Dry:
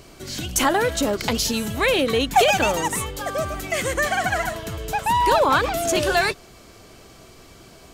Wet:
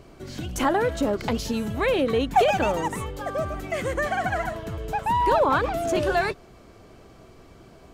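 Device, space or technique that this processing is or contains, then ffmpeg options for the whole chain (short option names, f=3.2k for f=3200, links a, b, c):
through cloth: -af "highshelf=f=2.4k:g=-13.5,volume=-1dB"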